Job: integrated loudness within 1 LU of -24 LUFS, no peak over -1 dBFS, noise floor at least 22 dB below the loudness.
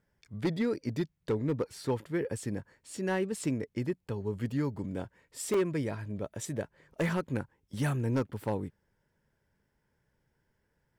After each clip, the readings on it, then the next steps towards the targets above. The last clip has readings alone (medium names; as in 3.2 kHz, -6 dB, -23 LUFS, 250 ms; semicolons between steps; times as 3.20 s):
clipped samples 0.8%; clipping level -23.0 dBFS; dropouts 1; longest dropout 3.4 ms; loudness -34.0 LUFS; peak level -23.0 dBFS; loudness target -24.0 LUFS
-> clip repair -23 dBFS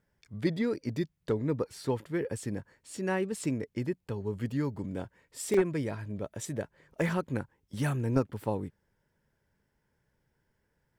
clipped samples 0.0%; dropouts 1; longest dropout 3.4 ms
-> interpolate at 5.54 s, 3.4 ms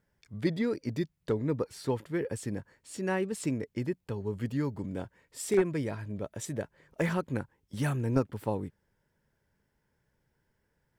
dropouts 0; loudness -33.0 LUFS; peak level -14.0 dBFS; loudness target -24.0 LUFS
-> trim +9 dB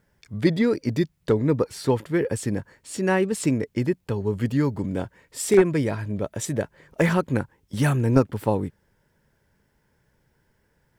loudness -24.0 LUFS; peak level -5.0 dBFS; noise floor -69 dBFS